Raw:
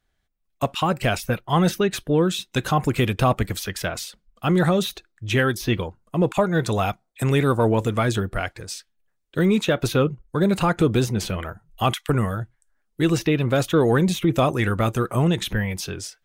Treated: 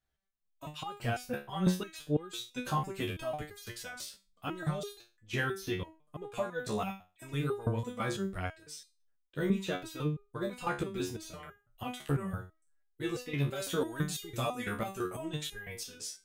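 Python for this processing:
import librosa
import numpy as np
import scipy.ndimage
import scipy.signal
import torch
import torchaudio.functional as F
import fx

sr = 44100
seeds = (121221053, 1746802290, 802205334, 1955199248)

y = fx.high_shelf(x, sr, hz=3700.0, db=fx.steps((0.0, 2.0), (13.36, 11.0), (14.61, 6.0)))
y = fx.resonator_held(y, sr, hz=6.0, low_hz=71.0, high_hz=410.0)
y = y * 10.0 ** (-3.0 / 20.0)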